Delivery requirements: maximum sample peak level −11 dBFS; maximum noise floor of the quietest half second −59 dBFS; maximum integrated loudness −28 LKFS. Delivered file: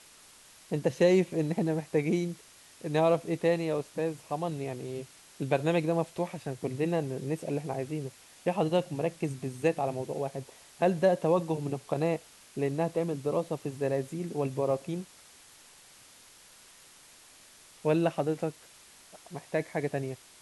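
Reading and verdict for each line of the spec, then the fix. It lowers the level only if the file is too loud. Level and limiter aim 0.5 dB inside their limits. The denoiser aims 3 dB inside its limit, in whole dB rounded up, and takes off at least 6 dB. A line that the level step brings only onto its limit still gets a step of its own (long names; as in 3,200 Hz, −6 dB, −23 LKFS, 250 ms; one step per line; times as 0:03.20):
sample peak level −12.5 dBFS: in spec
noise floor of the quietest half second −55 dBFS: out of spec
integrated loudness −30.5 LKFS: in spec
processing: broadband denoise 7 dB, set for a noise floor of −55 dBFS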